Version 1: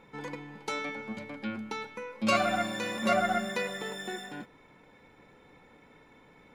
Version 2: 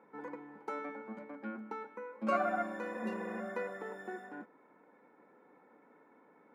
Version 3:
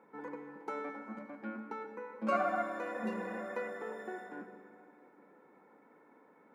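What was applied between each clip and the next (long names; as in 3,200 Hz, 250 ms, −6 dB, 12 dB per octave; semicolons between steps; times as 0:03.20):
high-pass filter 220 Hz 24 dB per octave; healed spectral selection 0:02.97–0:03.37, 420–2,700 Hz before; drawn EQ curve 1,500 Hz 0 dB, 3,500 Hz −22 dB, 14,000 Hz −15 dB; level −4 dB
convolution reverb RT60 2.5 s, pre-delay 59 ms, DRR 8 dB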